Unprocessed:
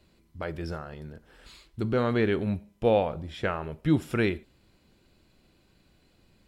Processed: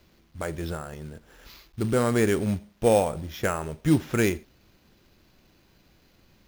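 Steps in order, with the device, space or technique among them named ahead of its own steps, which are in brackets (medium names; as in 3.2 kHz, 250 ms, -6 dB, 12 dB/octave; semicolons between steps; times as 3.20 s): early companding sampler (sample-rate reducer 8.9 kHz, jitter 0%; companded quantiser 6-bit); trim +2.5 dB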